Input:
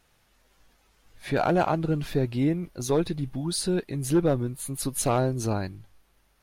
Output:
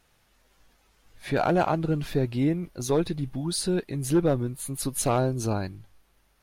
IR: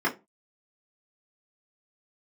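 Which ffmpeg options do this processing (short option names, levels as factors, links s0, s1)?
-filter_complex "[0:a]asettb=1/sr,asplit=3[s0][s1][s2];[s0]atrim=end=5.164[s3];[s1]atrim=start=5.16:end=5.65,asetpts=PTS-STARTPTS,afade=t=in:d=0.004:c=qsin,afade=t=out:st=0.486:d=0.004:c=qsin,bandreject=f=1900:w=7.4[s4];[s2]atrim=start=5.646[s5];[s3][s4]acrossfade=d=0.004:c1=hsin:c2=qsin[s6];[s6][s5]acrossfade=d=0.004:c1=qsin:c2=hsin"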